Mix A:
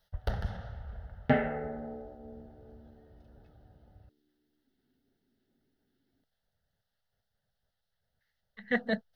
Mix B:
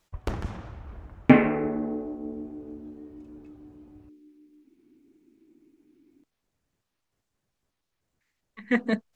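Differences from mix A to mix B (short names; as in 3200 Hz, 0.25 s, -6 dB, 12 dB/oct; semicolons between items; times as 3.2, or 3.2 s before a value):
second sound +3.5 dB; master: remove fixed phaser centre 1600 Hz, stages 8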